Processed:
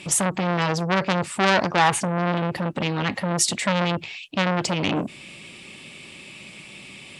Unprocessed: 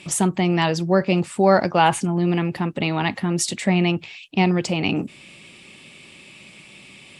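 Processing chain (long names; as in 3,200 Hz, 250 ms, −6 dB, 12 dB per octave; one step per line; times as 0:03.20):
saturating transformer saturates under 2,800 Hz
level +3 dB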